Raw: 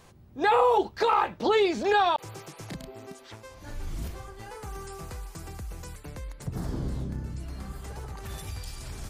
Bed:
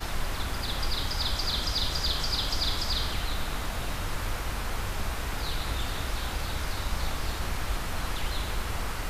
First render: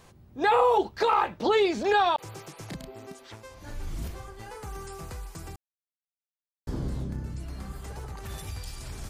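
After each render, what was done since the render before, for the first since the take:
0:05.56–0:06.67: silence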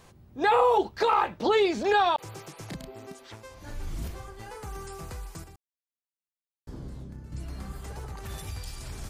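0:05.44–0:07.32: clip gain −8.5 dB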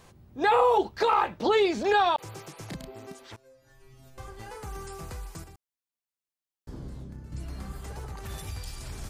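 0:03.36–0:04.18: stiff-string resonator 130 Hz, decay 0.72 s, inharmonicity 0.002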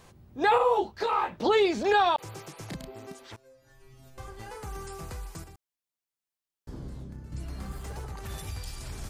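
0:00.58–0:01.38: micro pitch shift up and down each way 39 cents
0:07.61–0:08.02: converter with a step at zero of −51 dBFS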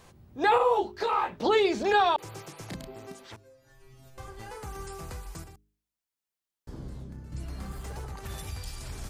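hum removal 51.4 Hz, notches 8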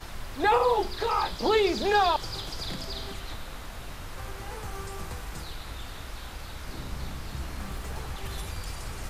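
mix in bed −8 dB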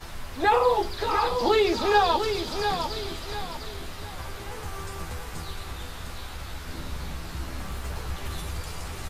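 double-tracking delay 12 ms −5.5 dB
repeating echo 702 ms, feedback 35%, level −7 dB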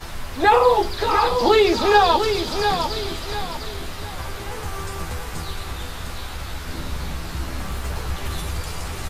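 level +6 dB
brickwall limiter −3 dBFS, peak gain reduction 1 dB

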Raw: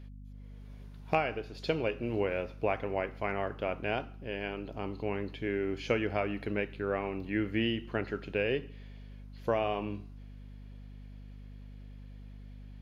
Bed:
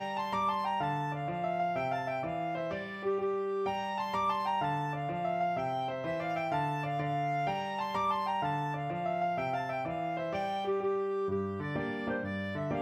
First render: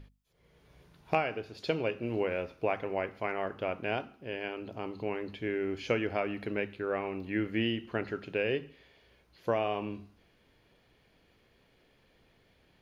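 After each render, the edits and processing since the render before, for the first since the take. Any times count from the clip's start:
mains-hum notches 50/100/150/200/250 Hz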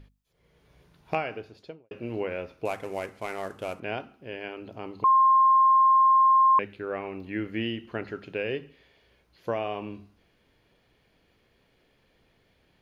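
0:01.33–0:01.91: fade out and dull
0:02.65–0:03.80: variable-slope delta modulation 64 kbit/s
0:05.04–0:06.59: beep over 1,060 Hz −15.5 dBFS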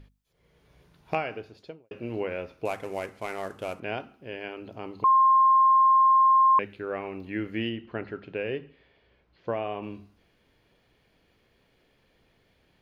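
0:07.69–0:09.83: high-frequency loss of the air 200 metres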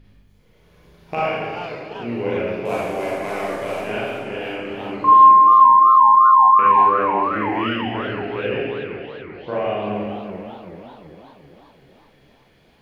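four-comb reverb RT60 1.6 s, combs from 30 ms, DRR −8 dB
feedback echo with a swinging delay time 387 ms, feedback 57%, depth 196 cents, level −10 dB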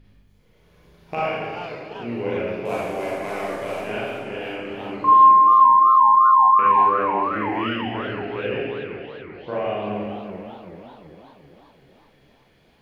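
level −2.5 dB

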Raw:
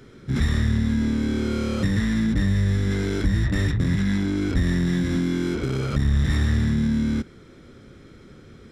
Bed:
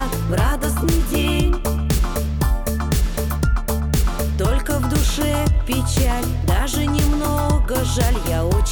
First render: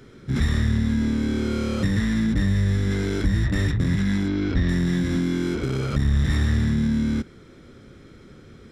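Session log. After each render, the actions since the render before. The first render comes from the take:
0:04.28–0:04.69: low-pass filter 5,300 Hz 24 dB per octave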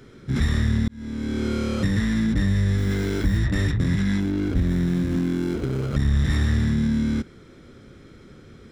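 0:00.88–0:01.46: fade in
0:02.78–0:03.38: hold until the input has moved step −43.5 dBFS
0:04.20–0:05.95: running median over 25 samples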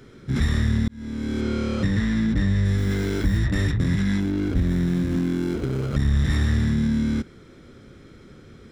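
0:01.41–0:02.65: high-frequency loss of the air 50 metres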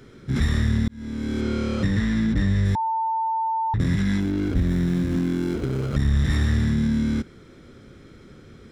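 0:02.75–0:03.74: beep over 895 Hz −21 dBFS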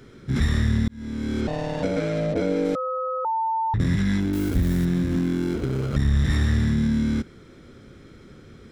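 0:01.47–0:03.25: ring modulation 380 Hz
0:04.33–0:04.85: spike at every zero crossing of −24.5 dBFS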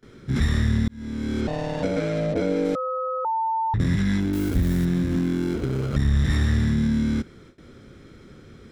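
noise gate with hold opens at −38 dBFS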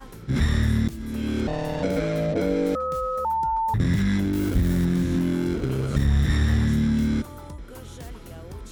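mix in bed −21.5 dB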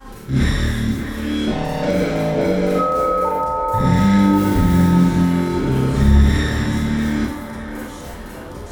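feedback echo with a band-pass in the loop 598 ms, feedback 69%, band-pass 880 Hz, level −4 dB
four-comb reverb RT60 0.53 s, combs from 30 ms, DRR −6 dB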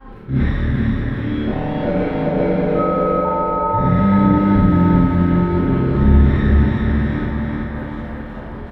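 high-frequency loss of the air 460 metres
repeating echo 383 ms, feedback 52%, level −3.5 dB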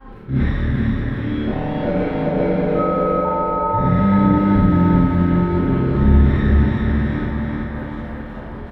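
level −1 dB

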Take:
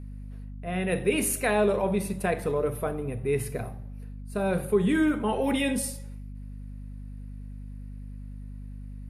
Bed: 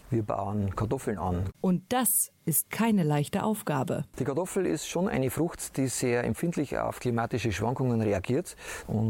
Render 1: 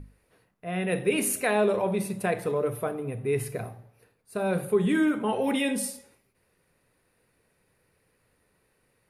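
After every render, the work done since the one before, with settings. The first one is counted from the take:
mains-hum notches 50/100/150/200/250 Hz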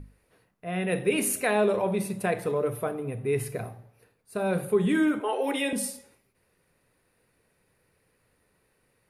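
0:05.20–0:05.73: Butterworth high-pass 280 Hz 72 dB per octave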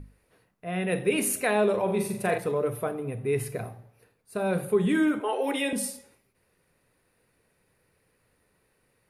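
0:01.84–0:02.38: flutter between parallel walls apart 7.2 metres, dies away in 0.44 s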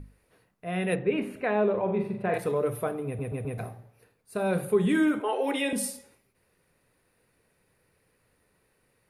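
0:00.95–0:02.34: high-frequency loss of the air 480 metres
0:03.06: stutter in place 0.13 s, 4 plays
0:05.22–0:05.70: high-shelf EQ 8,900 Hz −7 dB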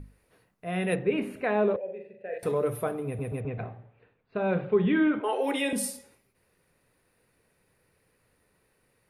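0:01.76–0:02.43: formant filter e
0:03.40–0:05.24: Butterworth low-pass 3,400 Hz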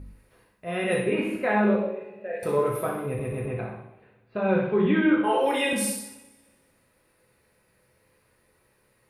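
flutter between parallel walls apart 10.7 metres, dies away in 0.43 s
coupled-rooms reverb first 0.59 s, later 1.6 s, from −18 dB, DRR −1.5 dB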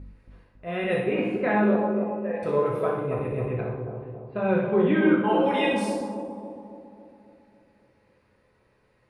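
high-frequency loss of the air 110 metres
bucket-brigade delay 276 ms, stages 2,048, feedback 55%, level −5 dB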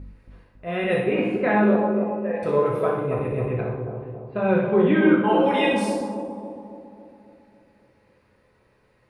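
level +3 dB

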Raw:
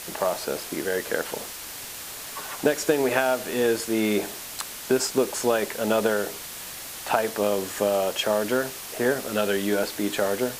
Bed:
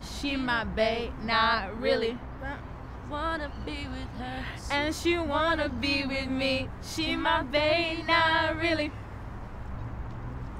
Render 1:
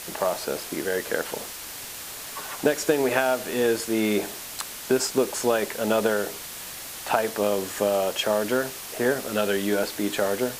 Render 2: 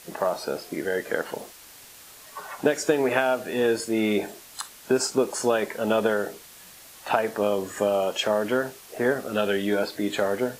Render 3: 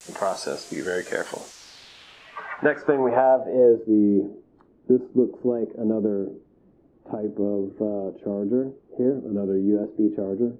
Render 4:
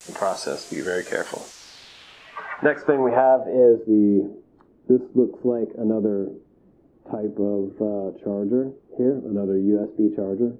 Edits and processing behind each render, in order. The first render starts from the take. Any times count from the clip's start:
no processing that can be heard
noise reduction from a noise print 10 dB
low-pass filter sweep 7,400 Hz → 320 Hz, 0:01.39–0:04.00; pitch vibrato 0.93 Hz 77 cents
level +1.5 dB

